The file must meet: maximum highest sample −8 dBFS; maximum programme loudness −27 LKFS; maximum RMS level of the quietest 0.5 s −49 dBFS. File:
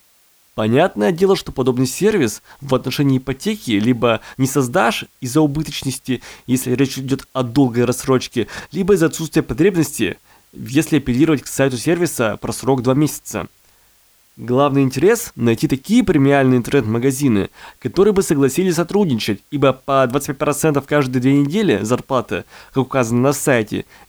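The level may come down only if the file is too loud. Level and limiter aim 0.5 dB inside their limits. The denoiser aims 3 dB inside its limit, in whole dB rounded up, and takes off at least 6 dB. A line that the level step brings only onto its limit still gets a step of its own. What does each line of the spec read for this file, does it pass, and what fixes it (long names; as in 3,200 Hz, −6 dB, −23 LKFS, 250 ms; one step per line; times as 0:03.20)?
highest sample −3.0 dBFS: out of spec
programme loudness −17.5 LKFS: out of spec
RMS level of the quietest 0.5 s −54 dBFS: in spec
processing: level −10 dB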